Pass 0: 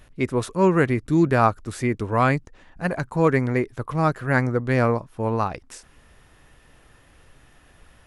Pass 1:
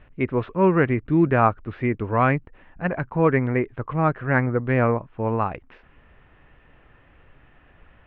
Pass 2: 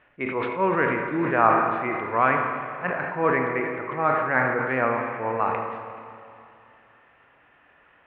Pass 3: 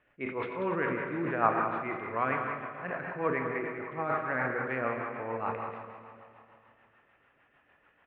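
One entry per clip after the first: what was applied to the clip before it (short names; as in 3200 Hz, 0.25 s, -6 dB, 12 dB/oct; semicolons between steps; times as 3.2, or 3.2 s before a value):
steep low-pass 2900 Hz 36 dB/oct
band-pass 1400 Hz, Q 0.57; Schroeder reverb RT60 2.8 s, combs from 27 ms, DRR 3.5 dB; sustainer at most 37 dB/s
rotary speaker horn 6.7 Hz; echo 0.188 s -8.5 dB; gain -6 dB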